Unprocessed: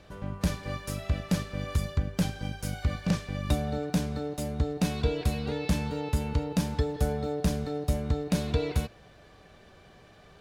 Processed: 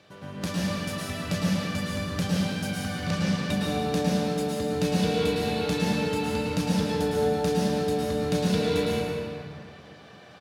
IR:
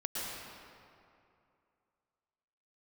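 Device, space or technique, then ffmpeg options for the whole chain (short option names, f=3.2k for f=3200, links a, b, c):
PA in a hall: -filter_complex "[0:a]highpass=f=110:w=0.5412,highpass=f=110:w=1.3066,equalizer=f=3.6k:t=o:w=2.1:g=4.5,aecho=1:1:180:0.282[a];[1:a]atrim=start_sample=2205[b];[a][b]afir=irnorm=-1:irlink=0"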